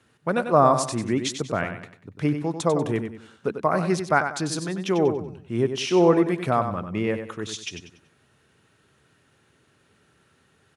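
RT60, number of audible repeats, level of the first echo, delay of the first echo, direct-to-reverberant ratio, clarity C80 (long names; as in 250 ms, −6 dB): no reverb audible, 3, −8.5 dB, 95 ms, no reverb audible, no reverb audible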